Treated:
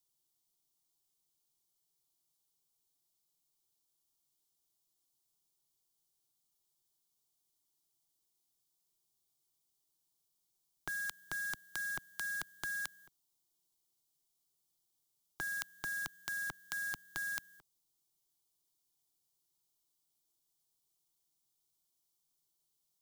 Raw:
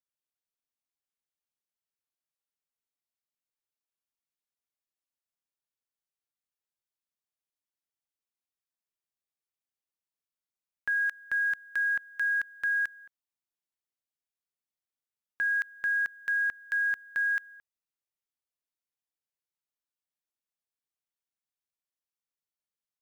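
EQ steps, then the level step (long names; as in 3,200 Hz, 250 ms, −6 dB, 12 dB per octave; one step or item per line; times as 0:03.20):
parametric band 1,100 Hz −8 dB 2.2 octaves
phaser with its sweep stopped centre 350 Hz, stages 8
notch filter 2,600 Hz, Q 5.9
+14.0 dB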